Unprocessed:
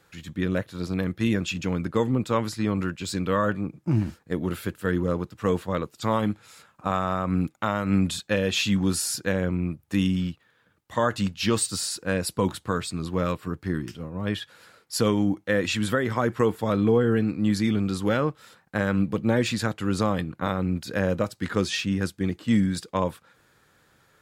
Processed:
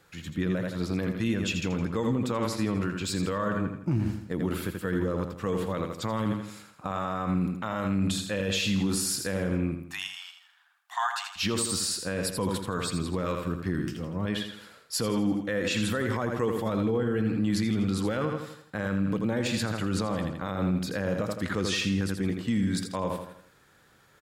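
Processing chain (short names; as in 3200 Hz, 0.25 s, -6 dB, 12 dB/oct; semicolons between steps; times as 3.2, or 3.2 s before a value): 9.84–11.36 brick-wall FIR high-pass 670 Hz; feedback echo 82 ms, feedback 44%, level -8 dB; limiter -18.5 dBFS, peak gain reduction 10.5 dB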